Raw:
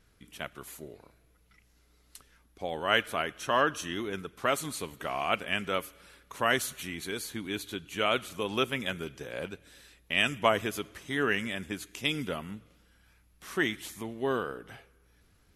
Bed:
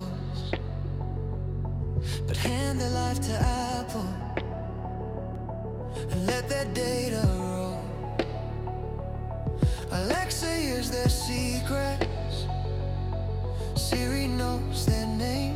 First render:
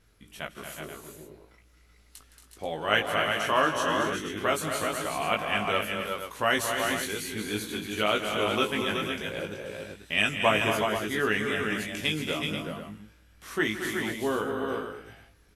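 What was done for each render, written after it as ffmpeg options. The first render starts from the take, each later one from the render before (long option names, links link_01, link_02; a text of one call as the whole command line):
ffmpeg -i in.wav -filter_complex "[0:a]asplit=2[link_01][link_02];[link_02]adelay=19,volume=-4dB[link_03];[link_01][link_03]amix=inputs=2:normalize=0,aecho=1:1:165|228|270|360|379|483:0.2|0.422|0.251|0.299|0.376|0.316" out.wav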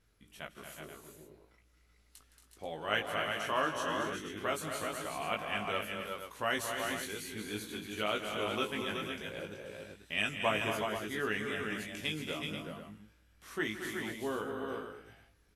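ffmpeg -i in.wav -af "volume=-8dB" out.wav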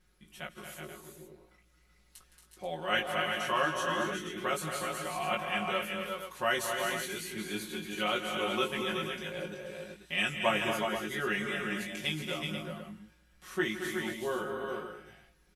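ffmpeg -i in.wav -af "bandreject=frequency=460:width=12,aecho=1:1:5.5:1" out.wav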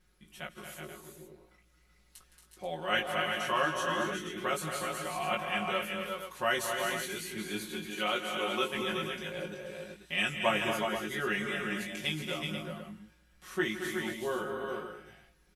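ffmpeg -i in.wav -filter_complex "[0:a]asettb=1/sr,asplit=3[link_01][link_02][link_03];[link_01]atrim=end=7.904[link_04];[link_02]atrim=start=7.9:end=8.75,asetpts=PTS-STARTPTS,afade=type=in:duration=0.004:curve=qsin,afade=type=out:start_time=0.846:duration=0.004:curve=qsin,highpass=frequency=210:poles=1[link_05];[link_03]atrim=start=8.746[link_06];[link_04][link_05]acrossfade=duration=0.004:curve1=hsin:curve2=qsin[link_07];[link_07][link_06]acrossfade=duration=0.004:curve1=qsin:curve2=hsin" out.wav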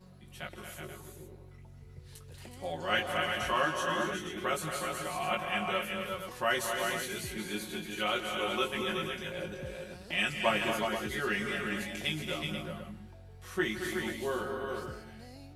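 ffmpeg -i in.wav -i bed.wav -filter_complex "[1:a]volume=-21.5dB[link_01];[0:a][link_01]amix=inputs=2:normalize=0" out.wav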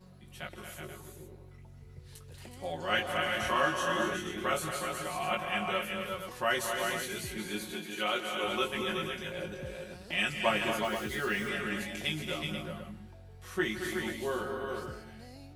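ffmpeg -i in.wav -filter_complex "[0:a]asettb=1/sr,asplit=3[link_01][link_02][link_03];[link_01]atrim=end=3.234[link_04];[link_02]atrim=start=3.23:end=4.71,asetpts=PTS-STARTPTS,afade=type=in:duration=0.004:curve=qsin,afade=type=out:start_time=1.476:duration=0.004:curve=qsin,asplit=2[link_05][link_06];[link_06]adelay=28,volume=-5dB[link_07];[link_05][link_07]amix=inputs=2:normalize=0,atrim=end_sample=65268[link_08];[link_03]atrim=start=4.706[link_09];[link_04][link_08]acrossfade=duration=0.004:curve1=hsin:curve2=qsin[link_10];[link_10][link_09]acrossfade=duration=0.004:curve1=qsin:curve2=hsin,asettb=1/sr,asplit=3[link_11][link_12][link_13];[link_11]atrim=end=7.734[link_14];[link_12]atrim=start=7.73:end=8.44,asetpts=PTS-STARTPTS,afade=type=in:duration=0.004:curve=qsin,afade=type=out:start_time=0.706:duration=0.004:curve=qsin,highpass=180[link_15];[link_13]atrim=start=8.436[link_16];[link_14][link_15]acrossfade=duration=0.004:curve1=hsin:curve2=qsin[link_17];[link_17][link_16]acrossfade=duration=0.004:curve1=qsin:curve2=hsin,asettb=1/sr,asplit=3[link_18][link_19][link_20];[link_18]atrim=end=10.844[link_21];[link_19]atrim=start=10.84:end=11.49,asetpts=PTS-STARTPTS,afade=type=in:duration=0.004:curve=qsin,afade=type=out:start_time=0.646:duration=0.004:curve=qsin,acrusher=bits=9:dc=4:mix=0:aa=0.000001[link_22];[link_20]atrim=start=11.486[link_23];[link_21][link_22]acrossfade=duration=0.004:curve1=hsin:curve2=qsin[link_24];[link_24][link_23]acrossfade=duration=0.004:curve1=qsin:curve2=hsin" out.wav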